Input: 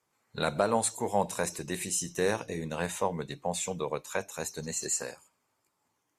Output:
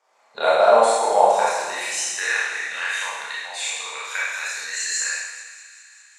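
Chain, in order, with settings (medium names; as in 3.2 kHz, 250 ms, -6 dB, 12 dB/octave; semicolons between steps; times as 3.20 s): low-pass 6 kHz 12 dB/octave; in parallel at +1.5 dB: compression, threshold -39 dBFS, peak gain reduction 16.5 dB; on the sum: high-pass sweep 660 Hz -> 1.8 kHz, 1.19–2.35 s; on a send: feedback echo behind a high-pass 197 ms, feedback 73%, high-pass 1.4 kHz, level -16.5 dB; on the sum: Schroeder reverb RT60 1.2 s, combs from 27 ms, DRR -7.5 dB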